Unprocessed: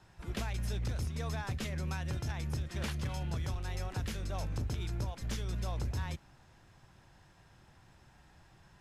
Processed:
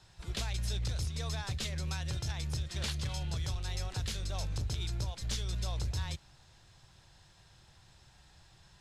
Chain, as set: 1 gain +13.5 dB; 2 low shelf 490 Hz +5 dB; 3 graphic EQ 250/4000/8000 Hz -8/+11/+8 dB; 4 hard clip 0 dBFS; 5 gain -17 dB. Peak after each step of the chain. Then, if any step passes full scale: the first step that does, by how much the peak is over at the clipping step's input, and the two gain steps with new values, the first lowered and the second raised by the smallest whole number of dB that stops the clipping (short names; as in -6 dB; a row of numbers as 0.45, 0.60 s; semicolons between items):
-15.5, -10.5, -5.0, -5.0, -22.0 dBFS; no overload